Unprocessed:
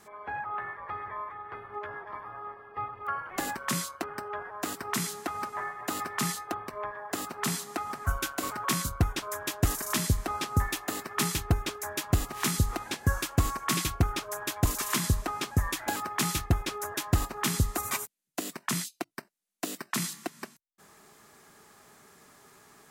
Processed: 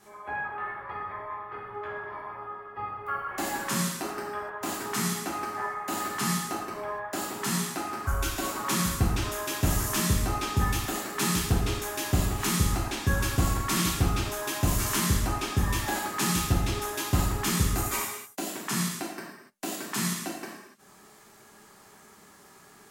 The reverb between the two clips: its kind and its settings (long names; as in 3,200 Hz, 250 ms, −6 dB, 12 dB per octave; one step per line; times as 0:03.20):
reverb whose tail is shaped and stops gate 320 ms falling, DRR −5.5 dB
level −4 dB